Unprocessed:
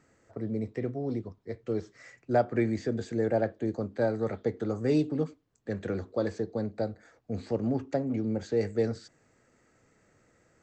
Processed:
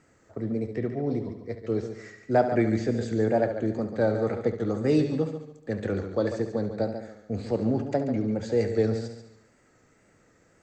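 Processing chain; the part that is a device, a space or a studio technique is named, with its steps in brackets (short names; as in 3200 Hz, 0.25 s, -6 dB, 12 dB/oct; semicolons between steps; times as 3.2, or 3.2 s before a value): multi-head tape echo (multi-head echo 71 ms, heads first and second, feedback 40%, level -11 dB; wow and flutter 47 cents); 0.74–1.15 LPF 6600 Hz; gain +3 dB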